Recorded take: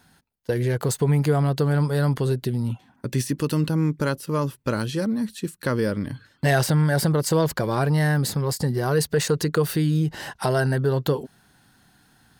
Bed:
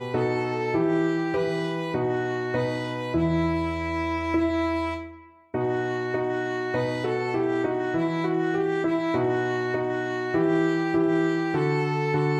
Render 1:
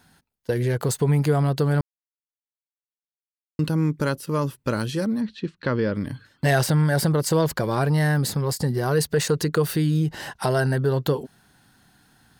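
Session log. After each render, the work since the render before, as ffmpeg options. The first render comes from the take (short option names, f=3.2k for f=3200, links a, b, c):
-filter_complex "[0:a]asplit=3[a][b][c];[a]afade=t=out:st=5.2:d=0.02[d];[b]lowpass=f=4.3k:w=0.5412,lowpass=f=4.3k:w=1.3066,afade=t=in:st=5.2:d=0.02,afade=t=out:st=5.94:d=0.02[e];[c]afade=t=in:st=5.94:d=0.02[f];[d][e][f]amix=inputs=3:normalize=0,asplit=3[g][h][i];[g]atrim=end=1.81,asetpts=PTS-STARTPTS,afade=t=out:st=1.806:d=0.004:c=hsin[j];[h]atrim=start=1.81:end=3.59,asetpts=PTS-STARTPTS,volume=0[k];[i]atrim=start=3.59,asetpts=PTS-STARTPTS,afade=t=in:d=0.004:c=hsin[l];[j][k][l]concat=n=3:v=0:a=1"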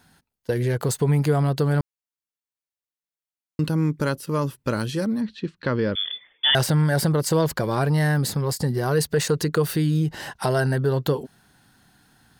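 -filter_complex "[0:a]asettb=1/sr,asplit=3[a][b][c];[a]atrim=end=5.954[d];[b]atrim=start=5.95:end=6.55,asetpts=PTS-STARTPTS,afade=t=in:d=0.004:c=qsin,afade=t=out:st=0.596:d=0.004:c=qsin,lowpass=f=3.1k:t=q:w=0.5098,lowpass=f=3.1k:t=q:w=0.6013,lowpass=f=3.1k:t=q:w=0.9,lowpass=f=3.1k:t=q:w=2.563,afreqshift=-3600[e];[c]atrim=start=6.546[f];[d][e]acrossfade=d=0.004:c1=hsin:c2=qsin[g];[g][f]acrossfade=d=0.004:c1=qsin:c2=hsin"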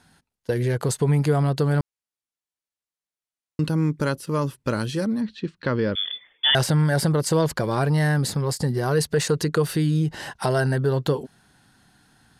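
-af "lowpass=f=12k:w=0.5412,lowpass=f=12k:w=1.3066"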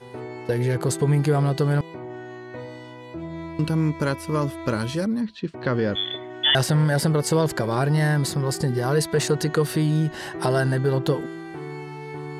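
-filter_complex "[1:a]volume=-10.5dB[a];[0:a][a]amix=inputs=2:normalize=0"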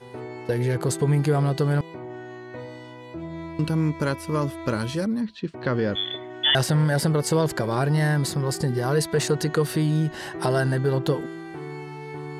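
-af "volume=-1dB"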